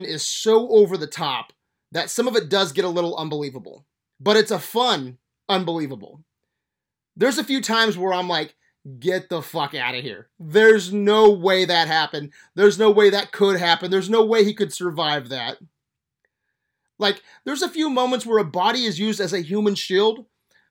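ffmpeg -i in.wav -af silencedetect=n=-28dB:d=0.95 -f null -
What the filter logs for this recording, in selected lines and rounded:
silence_start: 6.05
silence_end: 7.21 | silence_duration: 1.16
silence_start: 15.53
silence_end: 17.01 | silence_duration: 1.48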